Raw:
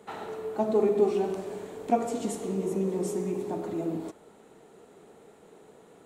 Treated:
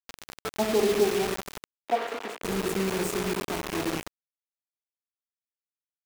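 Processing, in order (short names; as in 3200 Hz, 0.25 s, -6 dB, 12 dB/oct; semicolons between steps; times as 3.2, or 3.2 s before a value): rattling part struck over -41 dBFS, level -33 dBFS; bit-crush 5-bit; 1.8–2.42 three-band isolator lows -23 dB, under 350 Hz, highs -17 dB, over 3700 Hz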